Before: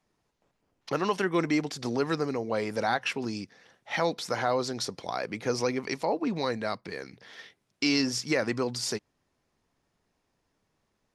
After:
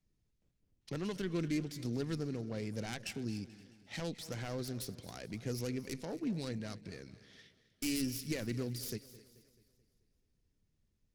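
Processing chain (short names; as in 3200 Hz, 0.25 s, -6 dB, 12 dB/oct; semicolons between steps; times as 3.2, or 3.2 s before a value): self-modulated delay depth 0.17 ms; passive tone stack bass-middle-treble 10-0-1; thinning echo 0.261 s, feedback 32%, high-pass 420 Hz, level -18 dB; warbling echo 0.217 s, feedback 51%, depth 99 cents, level -18.5 dB; gain +12 dB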